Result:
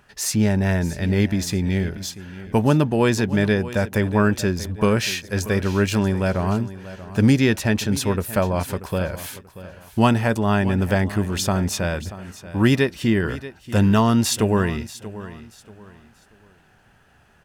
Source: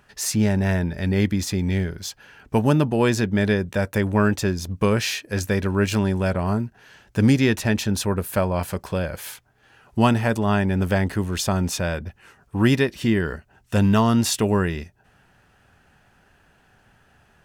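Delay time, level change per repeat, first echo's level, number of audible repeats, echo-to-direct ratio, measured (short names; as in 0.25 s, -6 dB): 0.634 s, -10.5 dB, -15.5 dB, 2, -15.0 dB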